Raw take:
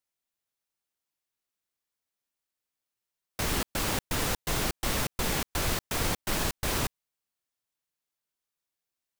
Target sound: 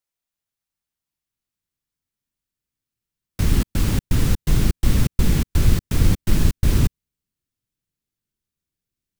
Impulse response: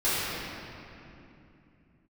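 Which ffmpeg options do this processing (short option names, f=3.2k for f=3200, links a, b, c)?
-af "asubboost=boost=9:cutoff=240"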